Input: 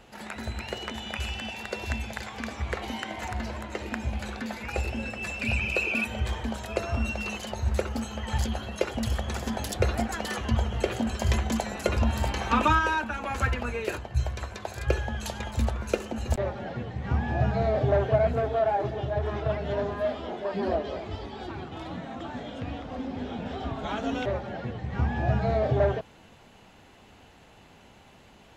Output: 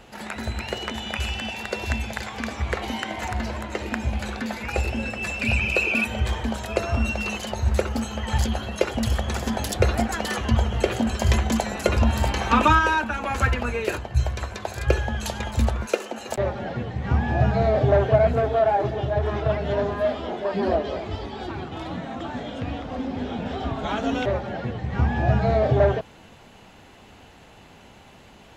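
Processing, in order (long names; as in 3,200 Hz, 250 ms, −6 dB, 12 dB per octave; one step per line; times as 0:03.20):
0:15.86–0:16.36: high-pass filter 380 Hz 12 dB per octave
level +5 dB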